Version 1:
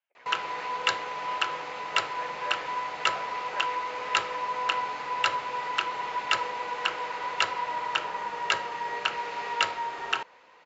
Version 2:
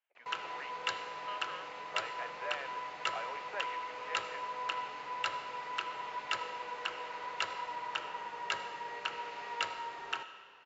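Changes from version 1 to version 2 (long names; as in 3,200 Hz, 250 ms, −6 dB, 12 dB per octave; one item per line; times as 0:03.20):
background −11.0 dB
reverb: on, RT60 2.0 s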